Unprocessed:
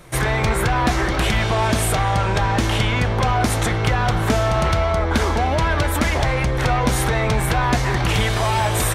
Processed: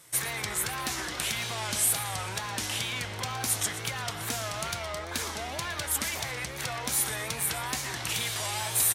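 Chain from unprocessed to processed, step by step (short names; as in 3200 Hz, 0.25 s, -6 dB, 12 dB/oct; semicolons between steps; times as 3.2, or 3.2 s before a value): HPF 72 Hz 24 dB/oct; pre-emphasis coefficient 0.9; on a send: feedback echo 0.119 s, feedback 53%, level -13 dB; on the sum: wow and flutter 110 cents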